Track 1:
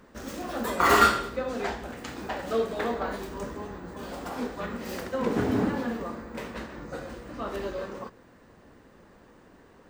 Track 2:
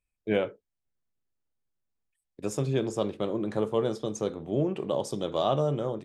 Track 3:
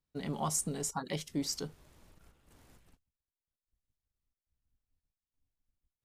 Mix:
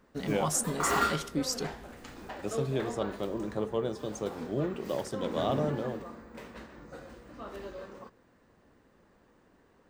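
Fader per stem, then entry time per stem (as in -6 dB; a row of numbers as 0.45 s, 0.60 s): -9.0 dB, -4.5 dB, +3.0 dB; 0.00 s, 0.00 s, 0.00 s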